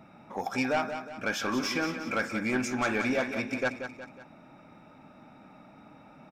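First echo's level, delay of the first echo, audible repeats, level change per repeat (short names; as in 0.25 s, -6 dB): -9.0 dB, 0.182 s, 3, -6.5 dB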